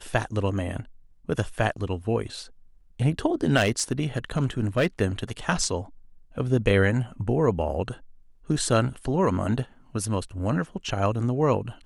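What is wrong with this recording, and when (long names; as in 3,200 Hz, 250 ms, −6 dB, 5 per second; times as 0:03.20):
0:03.56–0:04.87: clipping −16 dBFS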